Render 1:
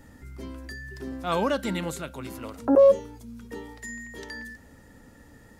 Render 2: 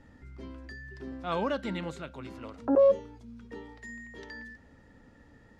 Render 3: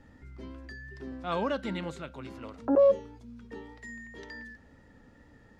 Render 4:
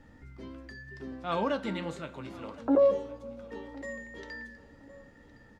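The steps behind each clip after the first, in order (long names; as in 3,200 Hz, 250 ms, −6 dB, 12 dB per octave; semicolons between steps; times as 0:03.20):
low-pass filter 4,300 Hz 12 dB per octave; level −5 dB
tape wow and flutter 25 cents
repeating echo 1,064 ms, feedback 29%, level −20 dB; convolution reverb, pre-delay 3 ms, DRR 9 dB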